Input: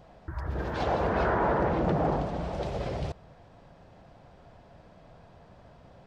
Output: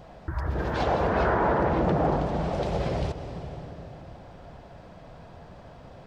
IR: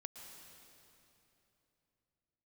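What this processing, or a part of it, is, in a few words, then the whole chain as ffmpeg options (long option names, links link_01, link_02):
ducked reverb: -filter_complex "[0:a]asplit=3[link_01][link_02][link_03];[1:a]atrim=start_sample=2205[link_04];[link_02][link_04]afir=irnorm=-1:irlink=0[link_05];[link_03]apad=whole_len=267394[link_06];[link_05][link_06]sidechaincompress=threshold=-31dB:ratio=8:attack=8.7:release=611,volume=6.5dB[link_07];[link_01][link_07]amix=inputs=2:normalize=0"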